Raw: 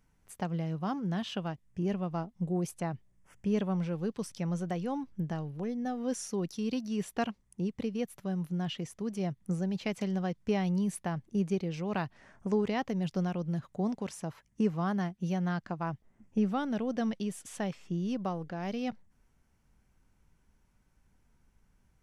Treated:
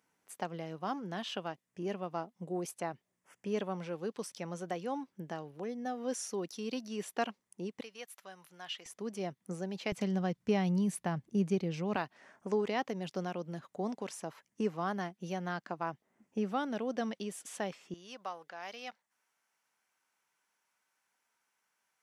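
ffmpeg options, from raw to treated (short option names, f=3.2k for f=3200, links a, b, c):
-af "asetnsamples=n=441:p=0,asendcmd='7.81 highpass f 1000;8.86 highpass f 300;9.92 highpass f 120;11.96 highpass f 300;17.94 highpass f 880',highpass=330"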